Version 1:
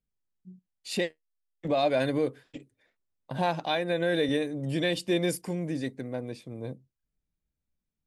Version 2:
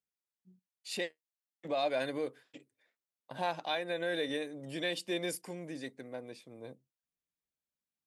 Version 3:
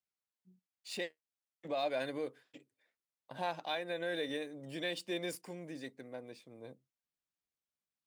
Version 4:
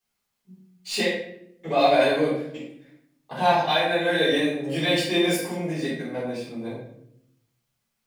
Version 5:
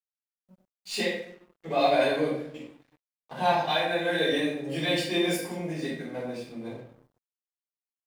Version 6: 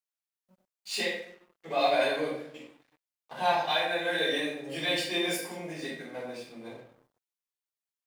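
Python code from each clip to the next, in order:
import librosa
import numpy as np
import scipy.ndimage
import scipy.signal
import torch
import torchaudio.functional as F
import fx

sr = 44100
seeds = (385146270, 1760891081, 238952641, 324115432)

y1 = fx.highpass(x, sr, hz=510.0, slope=6)
y1 = y1 * librosa.db_to_amplitude(-4.5)
y2 = scipy.signal.medfilt(y1, 3)
y2 = y2 * librosa.db_to_amplitude(-3.0)
y3 = fx.room_shoebox(y2, sr, seeds[0], volume_m3=150.0, walls='mixed', distance_m=3.8)
y3 = y3 * librosa.db_to_amplitude(5.0)
y4 = np.sign(y3) * np.maximum(np.abs(y3) - 10.0 ** (-51.0 / 20.0), 0.0)
y4 = y4 * librosa.db_to_amplitude(-4.0)
y5 = fx.low_shelf(y4, sr, hz=350.0, db=-11.5)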